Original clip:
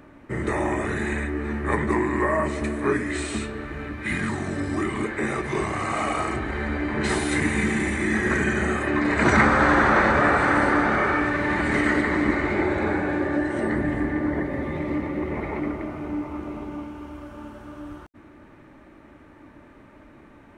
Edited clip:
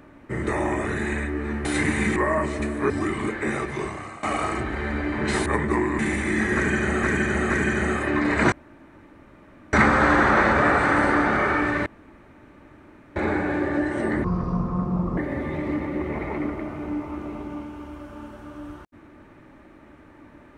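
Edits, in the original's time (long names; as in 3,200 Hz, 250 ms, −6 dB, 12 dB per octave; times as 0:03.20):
0:01.65–0:02.18: swap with 0:07.22–0:07.73
0:02.92–0:04.66: remove
0:05.32–0:05.99: fade out, to −18.5 dB
0:08.30–0:08.77: repeat, 3 plays
0:09.32: splice in room tone 1.21 s
0:11.45–0:12.75: fill with room tone
0:13.83–0:14.39: play speed 60%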